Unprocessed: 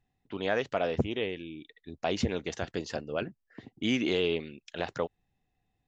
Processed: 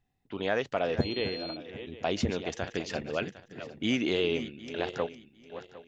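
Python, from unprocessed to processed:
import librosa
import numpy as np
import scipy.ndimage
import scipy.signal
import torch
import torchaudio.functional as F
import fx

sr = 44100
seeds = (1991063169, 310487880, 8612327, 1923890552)

y = fx.reverse_delay_fb(x, sr, ms=378, feedback_pct=46, wet_db=-11)
y = fx.dmg_tone(y, sr, hz=4200.0, level_db=-39.0, at=(1.0, 1.55), fade=0.02)
y = fx.dynamic_eq(y, sr, hz=2300.0, q=1.2, threshold_db=-53.0, ratio=4.0, max_db=5, at=(2.63, 3.7))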